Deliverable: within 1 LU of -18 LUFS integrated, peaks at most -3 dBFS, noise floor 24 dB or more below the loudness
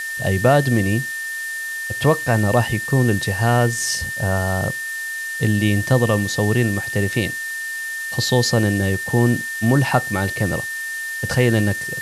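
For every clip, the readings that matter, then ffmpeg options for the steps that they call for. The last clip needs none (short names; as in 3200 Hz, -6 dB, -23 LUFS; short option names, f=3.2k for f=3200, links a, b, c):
steady tone 1800 Hz; tone level -25 dBFS; noise floor -28 dBFS; noise floor target -44 dBFS; loudness -19.5 LUFS; peak -4.0 dBFS; loudness target -18.0 LUFS
-> -af "bandreject=f=1.8k:w=30"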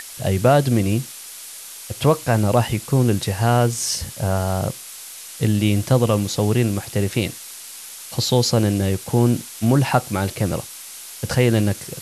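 steady tone none; noise floor -37 dBFS; noise floor target -44 dBFS
-> -af "afftdn=nr=7:nf=-37"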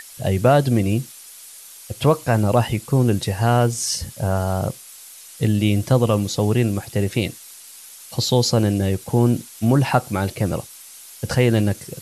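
noise floor -42 dBFS; noise floor target -44 dBFS
-> -af "afftdn=nr=6:nf=-42"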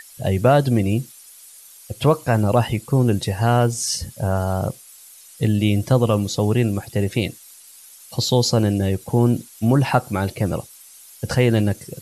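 noise floor -45 dBFS; loudness -20.0 LUFS; peak -3.5 dBFS; loudness target -18.0 LUFS
-> -af "volume=2dB,alimiter=limit=-3dB:level=0:latency=1"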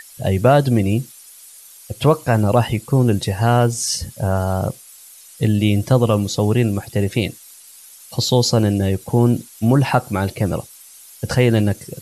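loudness -18.0 LUFS; peak -3.0 dBFS; noise floor -43 dBFS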